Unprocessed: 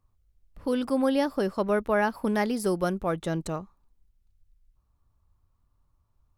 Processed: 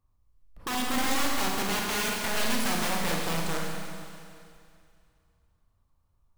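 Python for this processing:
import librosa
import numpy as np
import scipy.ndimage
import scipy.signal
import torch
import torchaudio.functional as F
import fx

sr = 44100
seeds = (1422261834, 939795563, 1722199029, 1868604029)

y = (np.mod(10.0 ** (23.0 / 20.0) * x + 1.0, 2.0) - 1.0) / 10.0 ** (23.0 / 20.0)
y = fx.rev_schroeder(y, sr, rt60_s=2.4, comb_ms=32, drr_db=-1.5)
y = F.gain(torch.from_numpy(y), -3.5).numpy()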